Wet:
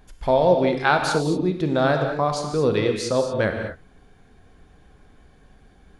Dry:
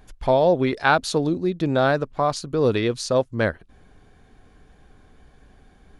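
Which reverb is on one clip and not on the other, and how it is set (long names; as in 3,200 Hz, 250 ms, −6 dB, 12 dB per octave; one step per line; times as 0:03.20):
reverb whose tail is shaped and stops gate 260 ms flat, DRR 3.5 dB
level −1.5 dB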